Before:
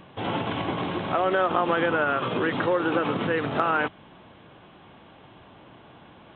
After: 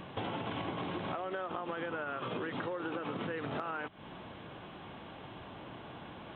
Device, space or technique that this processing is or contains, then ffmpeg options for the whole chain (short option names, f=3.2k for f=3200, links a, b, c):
serial compression, leveller first: -af "acompressor=threshold=-30dB:ratio=2,acompressor=threshold=-37dB:ratio=6,volume=2dB"